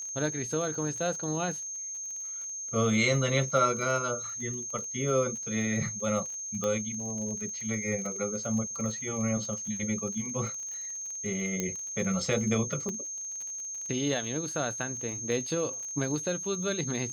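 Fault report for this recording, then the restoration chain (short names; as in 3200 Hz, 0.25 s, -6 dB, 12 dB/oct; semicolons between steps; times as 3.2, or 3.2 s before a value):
crackle 34/s -37 dBFS
tone 6400 Hz -35 dBFS
6.64 pop -18 dBFS
11.6 pop -15 dBFS
12.89 pop -22 dBFS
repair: de-click; notch 6400 Hz, Q 30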